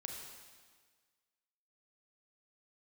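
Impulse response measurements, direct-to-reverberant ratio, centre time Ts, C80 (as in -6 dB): 1.0 dB, 66 ms, 4.0 dB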